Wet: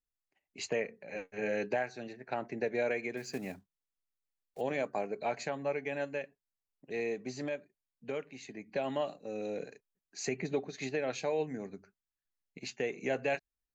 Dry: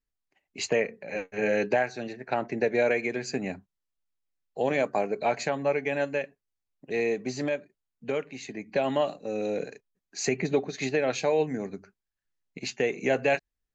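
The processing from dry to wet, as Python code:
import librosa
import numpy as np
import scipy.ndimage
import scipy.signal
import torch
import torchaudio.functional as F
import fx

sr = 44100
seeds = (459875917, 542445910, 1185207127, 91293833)

y = fx.block_float(x, sr, bits=5, at=(3.17, 4.62))
y = F.gain(torch.from_numpy(y), -8.0).numpy()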